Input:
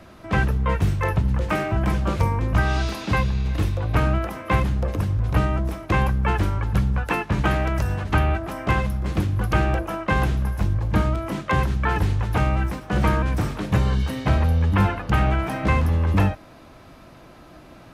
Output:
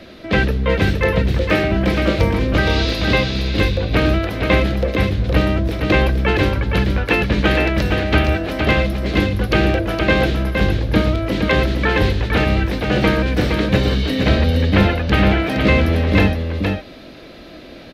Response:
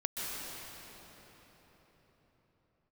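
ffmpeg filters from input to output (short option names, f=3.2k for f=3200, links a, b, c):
-filter_complex "[0:a]equalizer=f=125:t=o:w=1:g=-4,equalizer=f=250:t=o:w=1:g=5,equalizer=f=500:t=o:w=1:g=8,equalizer=f=1k:t=o:w=1:g=-8,equalizer=f=2k:t=o:w=1:g=5,equalizer=f=4k:t=o:w=1:g=12,equalizer=f=8k:t=o:w=1:g=-7,asplit=2[a][b];[b]aecho=0:1:466:0.562[c];[a][c]amix=inputs=2:normalize=0,volume=3dB"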